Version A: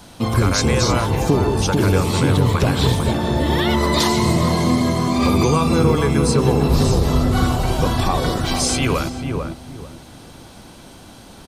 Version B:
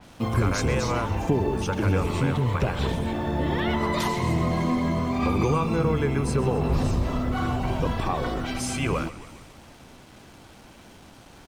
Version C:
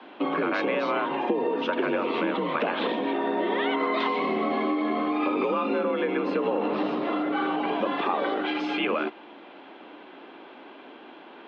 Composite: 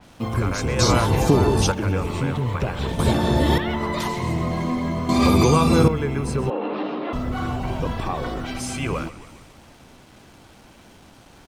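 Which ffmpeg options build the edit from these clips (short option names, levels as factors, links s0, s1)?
-filter_complex "[0:a]asplit=3[s0][s1][s2];[1:a]asplit=5[s3][s4][s5][s6][s7];[s3]atrim=end=0.792[s8];[s0]atrim=start=0.788:end=1.722[s9];[s4]atrim=start=1.718:end=2.992[s10];[s1]atrim=start=2.988:end=3.582[s11];[s5]atrim=start=3.578:end=5.092[s12];[s2]atrim=start=5.088:end=5.882[s13];[s6]atrim=start=5.878:end=6.502[s14];[2:a]atrim=start=6.498:end=7.132[s15];[s7]atrim=start=7.128[s16];[s8][s9]acrossfade=d=0.004:c1=hsin:c2=hsin[s17];[s17][s10]acrossfade=d=0.004:c1=hsin:c2=hsin[s18];[s18][s11]acrossfade=d=0.004:c1=hsin:c2=hsin[s19];[s19][s12]acrossfade=d=0.004:c1=hsin:c2=hsin[s20];[s20][s13]acrossfade=d=0.004:c1=hsin:c2=hsin[s21];[s21][s14]acrossfade=d=0.004:c1=hsin:c2=hsin[s22];[s22][s15]acrossfade=d=0.004:c1=hsin:c2=hsin[s23];[s23][s16]acrossfade=d=0.004:c1=hsin:c2=hsin"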